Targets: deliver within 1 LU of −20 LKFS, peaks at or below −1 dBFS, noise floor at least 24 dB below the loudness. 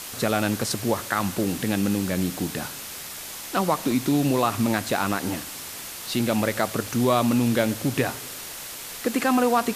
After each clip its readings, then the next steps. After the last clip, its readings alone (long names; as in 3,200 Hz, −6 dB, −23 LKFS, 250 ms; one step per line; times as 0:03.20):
number of dropouts 2; longest dropout 2.5 ms; background noise floor −37 dBFS; target noise floor −49 dBFS; integrated loudness −25.0 LKFS; sample peak −7.0 dBFS; target loudness −20.0 LKFS
→ repair the gap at 0:01.19/0:03.91, 2.5 ms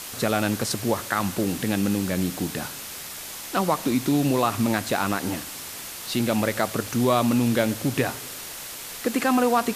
number of dropouts 0; background noise floor −37 dBFS; target noise floor −49 dBFS
→ noise reduction from a noise print 12 dB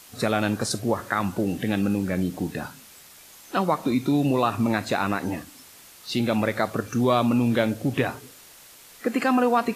background noise floor −49 dBFS; integrated loudness −24.5 LKFS; sample peak −7.0 dBFS; target loudness −20.0 LKFS
→ level +4.5 dB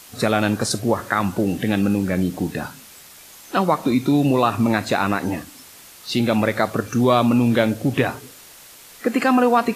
integrated loudness −20.0 LKFS; sample peak −2.5 dBFS; background noise floor −44 dBFS